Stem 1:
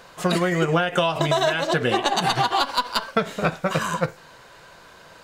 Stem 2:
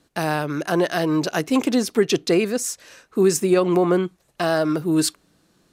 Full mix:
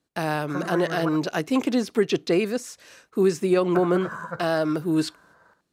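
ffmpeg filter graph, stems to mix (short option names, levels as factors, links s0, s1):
-filter_complex "[0:a]highshelf=f=2000:t=q:w=3:g=-9,adelay=300,volume=0.237,asplit=3[s0][s1][s2];[s0]atrim=end=1.09,asetpts=PTS-STARTPTS,afade=t=out:st=1.086:d=0.004:c=hsin[s3];[s1]atrim=start=1.09:end=3.75,asetpts=PTS-STARTPTS,volume=0[s4];[s2]atrim=start=3.75,asetpts=PTS-STARTPTS,afade=t=in:d=0.004:c=hsin[s5];[s3][s4][s5]concat=n=3:v=0:a=1,asplit=2[s6][s7];[s7]volume=0.299[s8];[1:a]acrossover=split=4500[s9][s10];[s10]acompressor=threshold=0.0126:ratio=4:attack=1:release=60[s11];[s9][s11]amix=inputs=2:normalize=0,agate=range=0.251:threshold=0.00178:ratio=16:detection=peak,volume=0.708[s12];[s8]aecho=0:1:74:1[s13];[s6][s12][s13]amix=inputs=3:normalize=0,highpass=46"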